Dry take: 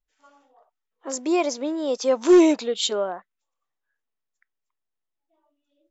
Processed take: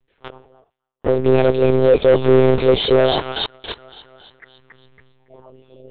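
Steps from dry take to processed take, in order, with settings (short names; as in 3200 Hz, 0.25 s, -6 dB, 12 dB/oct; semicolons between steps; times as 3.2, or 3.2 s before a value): octaver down 1 oct, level +3 dB; in parallel at 0 dB: limiter -14.5 dBFS, peak gain reduction 10.5 dB; on the sum: thin delay 0.283 s, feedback 34%, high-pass 1800 Hz, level -5.5 dB; sample leveller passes 5; monotone LPC vocoder at 8 kHz 130 Hz; bell 420 Hz +12 dB 0.82 oct; reverse; upward compressor, threshold 0 dBFS; reverse; gain -13 dB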